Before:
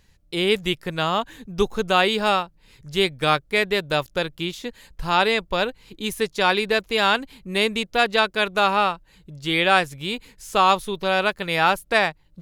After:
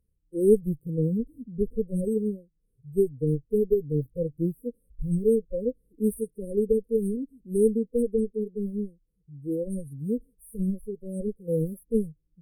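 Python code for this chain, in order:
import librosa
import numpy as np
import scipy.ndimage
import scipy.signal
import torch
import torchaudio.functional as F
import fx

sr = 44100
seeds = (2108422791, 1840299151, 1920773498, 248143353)

y = fx.hpss(x, sr, part='percussive', gain_db=-15)
y = fx.rider(y, sr, range_db=3, speed_s=0.5)
y = fx.cheby_harmonics(y, sr, harmonics=(4,), levels_db=(-10,), full_scale_db=-3.5)
y = fx.noise_reduce_blind(y, sr, reduce_db=15)
y = fx.brickwall_bandstop(y, sr, low_hz=540.0, high_hz=8200.0)
y = y * 10.0 ** (2.5 / 20.0)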